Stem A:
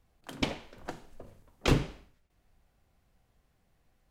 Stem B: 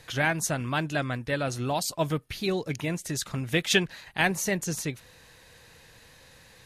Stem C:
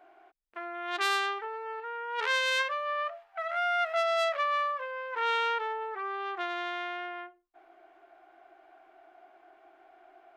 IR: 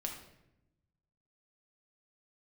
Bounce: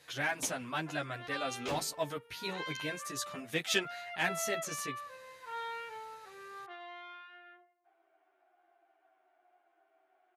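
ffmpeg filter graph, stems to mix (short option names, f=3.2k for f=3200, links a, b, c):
-filter_complex "[0:a]volume=-7dB[a];[1:a]asoftclip=type=tanh:threshold=-13dB,volume=-3dB[b];[2:a]lowpass=4.6k,adelay=300,volume=-12.5dB,asplit=2[c][d];[d]volume=-7dB[e];[3:a]atrim=start_sample=2205[f];[e][f]afir=irnorm=-1:irlink=0[g];[a][b][c][g]amix=inputs=4:normalize=0,highpass=f=360:p=1,asplit=2[h][i];[i]adelay=10.2,afreqshift=-1.1[j];[h][j]amix=inputs=2:normalize=1"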